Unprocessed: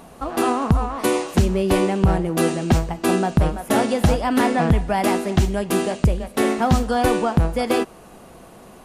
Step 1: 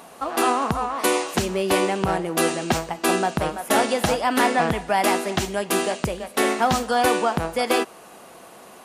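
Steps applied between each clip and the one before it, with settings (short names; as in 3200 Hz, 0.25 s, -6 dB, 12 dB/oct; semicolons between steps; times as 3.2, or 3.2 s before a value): HPF 660 Hz 6 dB/oct; gain +3.5 dB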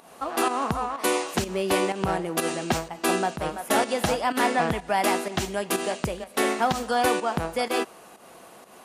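pump 125 bpm, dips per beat 1, -10 dB, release 0.156 s; gain -3 dB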